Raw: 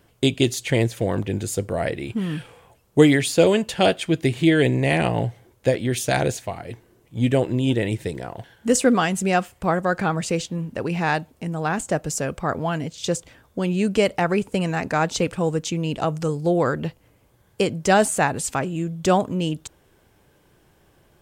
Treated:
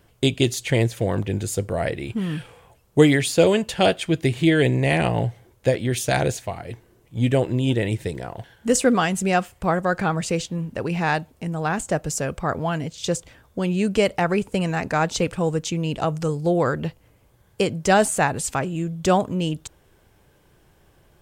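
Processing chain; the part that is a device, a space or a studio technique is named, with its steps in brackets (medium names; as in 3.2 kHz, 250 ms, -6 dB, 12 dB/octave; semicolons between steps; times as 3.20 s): low shelf boost with a cut just above (bass shelf 70 Hz +6 dB; peaking EQ 270 Hz -2 dB)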